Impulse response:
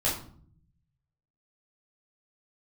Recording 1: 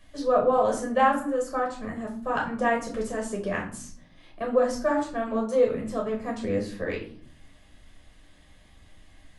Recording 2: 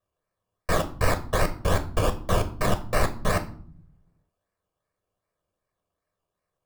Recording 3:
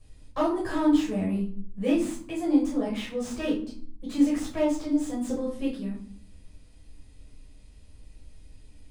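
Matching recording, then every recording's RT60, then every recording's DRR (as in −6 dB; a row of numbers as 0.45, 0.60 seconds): 3; 0.55, 0.55, 0.55 seconds; −1.0, 8.5, −7.0 decibels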